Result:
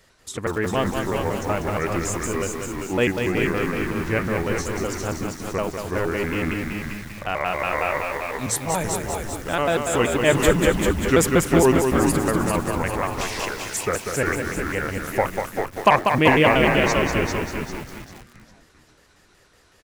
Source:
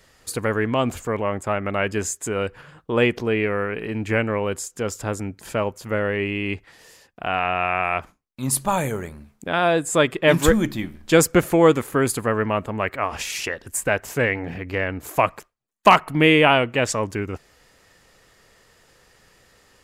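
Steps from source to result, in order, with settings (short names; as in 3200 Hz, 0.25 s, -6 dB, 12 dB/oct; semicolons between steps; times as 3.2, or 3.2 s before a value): trilling pitch shifter -3.5 st, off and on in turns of 93 ms; frequency-shifting echo 0.397 s, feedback 38%, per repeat -100 Hz, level -5 dB; lo-fi delay 0.192 s, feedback 55%, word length 6-bit, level -5 dB; gain -2 dB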